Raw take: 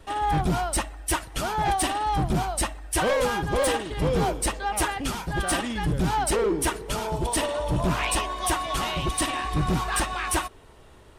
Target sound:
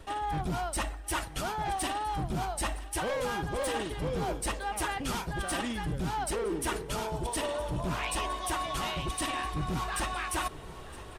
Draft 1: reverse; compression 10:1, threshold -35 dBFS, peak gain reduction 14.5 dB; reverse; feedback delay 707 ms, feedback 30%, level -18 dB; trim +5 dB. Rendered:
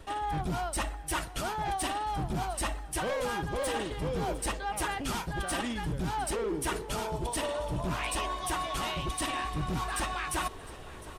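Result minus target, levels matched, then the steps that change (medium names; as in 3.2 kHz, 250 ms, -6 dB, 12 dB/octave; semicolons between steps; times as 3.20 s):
echo 258 ms early
change: feedback delay 965 ms, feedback 30%, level -18 dB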